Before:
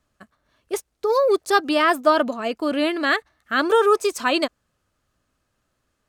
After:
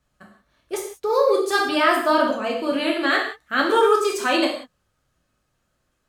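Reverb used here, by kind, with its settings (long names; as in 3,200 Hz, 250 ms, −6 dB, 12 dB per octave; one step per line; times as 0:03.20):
reverb whose tail is shaped and stops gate 210 ms falling, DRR −2 dB
level −3 dB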